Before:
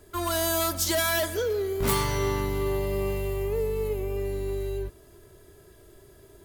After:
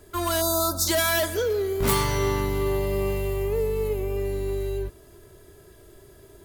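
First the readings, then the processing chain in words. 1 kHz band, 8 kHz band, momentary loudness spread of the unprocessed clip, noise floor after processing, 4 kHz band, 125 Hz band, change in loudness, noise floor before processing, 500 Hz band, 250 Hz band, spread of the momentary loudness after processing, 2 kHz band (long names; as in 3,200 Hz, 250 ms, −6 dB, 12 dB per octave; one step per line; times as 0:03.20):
+2.5 dB, +2.5 dB, 7 LU, −52 dBFS, +2.0 dB, +2.5 dB, +2.5 dB, −54 dBFS, +2.5 dB, +2.5 dB, 7 LU, +2.0 dB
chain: gain on a spectral selection 0:00.41–0:00.88, 1,600–3,500 Hz −28 dB
level +2.5 dB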